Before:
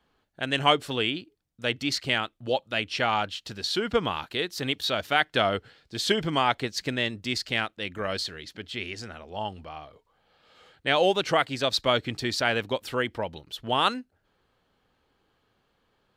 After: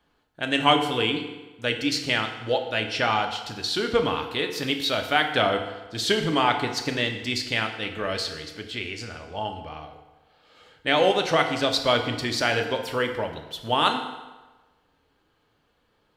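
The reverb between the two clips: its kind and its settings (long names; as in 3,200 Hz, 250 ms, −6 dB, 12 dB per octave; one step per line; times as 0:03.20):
feedback delay network reverb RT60 1.2 s, low-frequency decay 0.85×, high-frequency decay 0.8×, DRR 4 dB
level +1 dB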